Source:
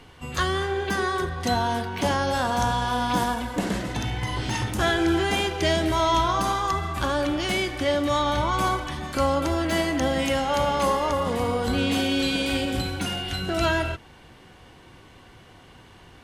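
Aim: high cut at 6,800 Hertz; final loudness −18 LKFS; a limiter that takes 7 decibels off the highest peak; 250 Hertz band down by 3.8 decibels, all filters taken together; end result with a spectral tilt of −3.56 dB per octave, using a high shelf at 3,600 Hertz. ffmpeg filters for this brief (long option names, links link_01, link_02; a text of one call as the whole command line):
ffmpeg -i in.wav -af "lowpass=6800,equalizer=frequency=250:width_type=o:gain=-5,highshelf=frequency=3600:gain=-4,volume=11dB,alimiter=limit=-9dB:level=0:latency=1" out.wav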